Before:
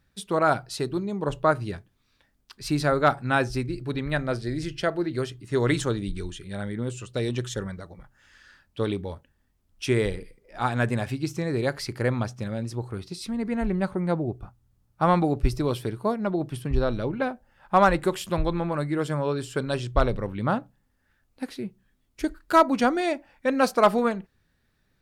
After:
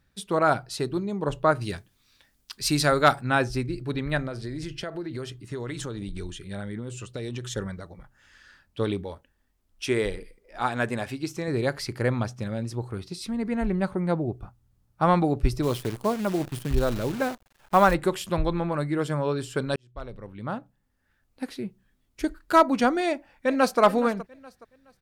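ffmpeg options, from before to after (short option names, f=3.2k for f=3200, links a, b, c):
-filter_complex "[0:a]asettb=1/sr,asplit=3[a][b][c];[a]atrim=end=1.614[d];[b]atrim=start=1.61:end=3.21,asetpts=PTS-STARTPTS,afade=t=in:d=0.004:c=qsin,afade=t=out:st=1.596:d=0.004:c=qsin,highshelf=f=2.5k:g=11[e];[c]atrim=start=3.206[f];[d][e]acrossfade=d=0.004:c1=hsin:c2=qsin[g];[g][f]acrossfade=d=0.004:c1=qsin:c2=hsin,asettb=1/sr,asplit=3[h][i][j];[h]atrim=end=4.274[k];[i]atrim=start=4.27:end=7.45,asetpts=PTS-STARTPTS,afade=t=in:d=0.004:c=qsin,afade=t=out:st=3.176:d=0.004:c=qsin,acompressor=threshold=-29dB:ratio=10:attack=3.2:release=140:knee=1:detection=peak[l];[j]atrim=start=7.446[m];[k][l]acrossfade=d=0.004:c1=hsin:c2=qsin[n];[n][m]acrossfade=d=0.004:c1=qsin:c2=hsin,asettb=1/sr,asplit=3[o][p][q];[o]atrim=end=9.034[r];[p]atrim=start=9.03:end=11.48,asetpts=PTS-STARTPTS,afade=t=in:d=0.004:c=qsin,afade=t=out:st=2.446:d=0.004:c=qsin,equalizer=f=120:t=o:w=1.5:g=-8[s];[q]atrim=start=11.476[t];[r][s]acrossfade=d=0.004:c1=hsin:c2=qsin[u];[u][t]acrossfade=d=0.004:c1=qsin:c2=hsin,asplit=3[v][w][x];[v]afade=t=out:st=15.62:d=0.02[y];[w]acrusher=bits=7:dc=4:mix=0:aa=0.000001,afade=t=in:st=15.62:d=0.02,afade=t=out:st=17.93:d=0.02[z];[x]afade=t=in:st=17.93:d=0.02[aa];[y][z][aa]amix=inputs=3:normalize=0,asplit=2[ab][ac];[ac]afade=t=in:st=23.08:d=0.01,afade=t=out:st=23.8:d=0.01,aecho=0:1:420|840|1260:0.16788|0.0503641|0.0151092[ad];[ab][ad]amix=inputs=2:normalize=0,asplit=2[ae][af];[ae]atrim=end=19.76,asetpts=PTS-STARTPTS,afade=t=out:st=19.756:d=0.004:c=hsin[ag];[af]atrim=start=19.76,asetpts=PTS-STARTPTS,afade=t=in:d=1.71[ah];[ag][ah]concat=n=2:v=0:a=1"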